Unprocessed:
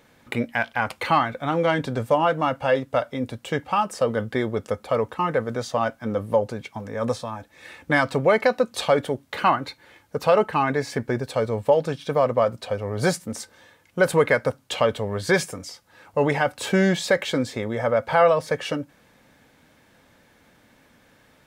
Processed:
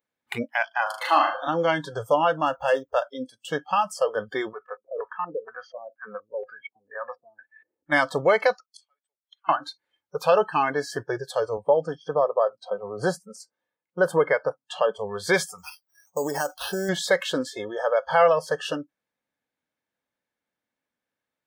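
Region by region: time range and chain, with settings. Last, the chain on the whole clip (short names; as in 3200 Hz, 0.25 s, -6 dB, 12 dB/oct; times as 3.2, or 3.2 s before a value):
0.82–1.48 HPF 260 Hz 24 dB/oct + bell 2300 Hz -5.5 dB 0.24 oct + flutter echo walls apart 6.6 m, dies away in 0.5 s
2.46–3.04 median filter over 9 samples + resonant low shelf 110 Hz +6.5 dB, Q 1.5
4.53–7.92 low shelf 320 Hz -8 dB + compressor 1.5:1, threshold -35 dBFS + LFO low-pass square 2.1 Hz 390–2000 Hz
8.53–9.49 HPF 980 Hz + flipped gate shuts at -26 dBFS, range -26 dB
11.57–14.99 HPF 110 Hz 24 dB/oct + high shelf 2300 Hz -9.5 dB
15.58–16.89 dynamic EQ 360 Hz, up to +6 dB, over -34 dBFS, Q 1.1 + compressor 10:1, threshold -20 dBFS + careless resampling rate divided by 6×, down none, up hold
whole clip: spectral noise reduction 29 dB; low shelf 170 Hz -11.5 dB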